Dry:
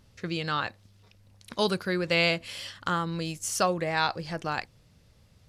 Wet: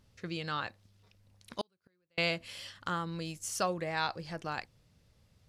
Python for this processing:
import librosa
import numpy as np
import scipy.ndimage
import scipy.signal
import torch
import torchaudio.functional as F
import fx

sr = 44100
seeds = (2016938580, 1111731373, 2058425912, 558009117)

y = fx.gate_flip(x, sr, shuts_db=-25.0, range_db=-42, at=(1.61, 2.18))
y = F.gain(torch.from_numpy(y), -6.5).numpy()